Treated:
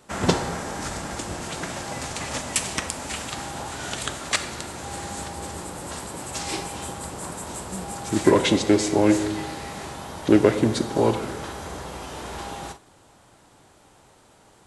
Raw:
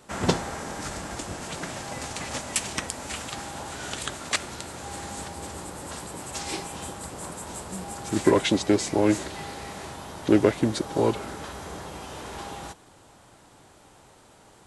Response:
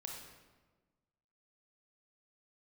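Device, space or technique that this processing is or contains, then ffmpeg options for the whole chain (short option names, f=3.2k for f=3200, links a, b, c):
keyed gated reverb: -filter_complex "[0:a]asplit=3[a][b][c];[1:a]atrim=start_sample=2205[d];[b][d]afir=irnorm=-1:irlink=0[e];[c]apad=whole_len=646747[f];[e][f]sidechaingate=range=-33dB:threshold=-43dB:ratio=16:detection=peak,volume=-0.5dB[g];[a][g]amix=inputs=2:normalize=0,volume=-1dB"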